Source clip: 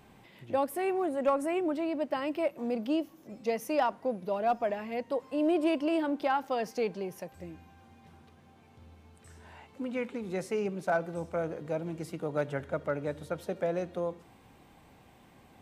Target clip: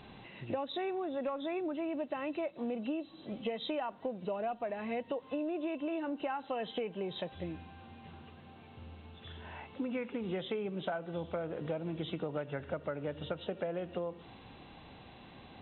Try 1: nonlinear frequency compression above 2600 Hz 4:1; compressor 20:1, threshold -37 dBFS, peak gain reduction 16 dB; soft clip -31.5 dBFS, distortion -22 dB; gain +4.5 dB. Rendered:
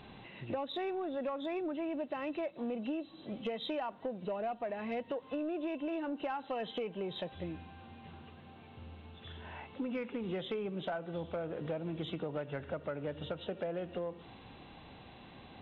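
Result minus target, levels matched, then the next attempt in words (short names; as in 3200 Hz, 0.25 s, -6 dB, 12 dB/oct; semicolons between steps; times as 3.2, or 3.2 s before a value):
soft clip: distortion +19 dB
nonlinear frequency compression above 2600 Hz 4:1; compressor 20:1, threshold -37 dBFS, peak gain reduction 16 dB; soft clip -20.5 dBFS, distortion -41 dB; gain +4.5 dB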